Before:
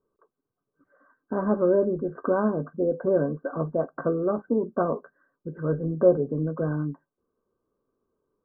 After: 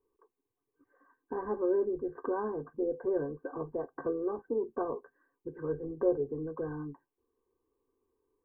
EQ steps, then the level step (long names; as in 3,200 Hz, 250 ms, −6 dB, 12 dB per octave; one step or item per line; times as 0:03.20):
dynamic equaliser 270 Hz, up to −8 dB, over −38 dBFS, Q 1.3
dynamic equaliser 1,000 Hz, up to −5 dB, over −39 dBFS, Q 1.1
phaser with its sweep stopped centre 910 Hz, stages 8
0.0 dB